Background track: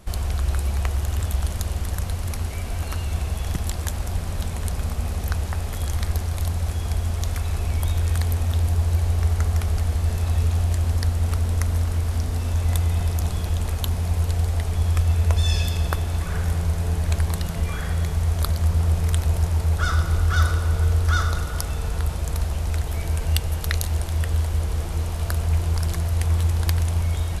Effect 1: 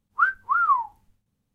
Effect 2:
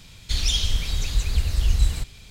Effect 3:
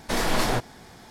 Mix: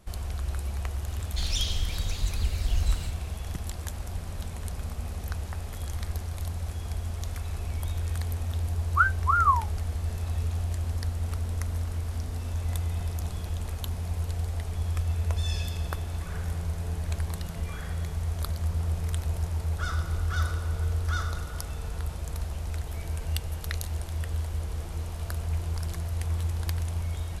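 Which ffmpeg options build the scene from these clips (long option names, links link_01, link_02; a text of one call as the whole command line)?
ffmpeg -i bed.wav -i cue0.wav -i cue1.wav -filter_complex "[0:a]volume=-8.5dB[link_01];[2:a]atrim=end=2.3,asetpts=PTS-STARTPTS,volume=-6.5dB,afade=type=in:duration=0.004:curve=hsin,afade=type=out:start_time=2.296:duration=0.004:curve=hsin,adelay=1070[link_02];[1:a]atrim=end=1.54,asetpts=PTS-STARTPTS,volume=-1.5dB,afade=type=in:duration=0.004:curve=hsin,afade=type=out:start_time=1.536:duration=0.004:curve=hsin,adelay=8780[link_03];[link_01][link_02][link_03]amix=inputs=3:normalize=0" out.wav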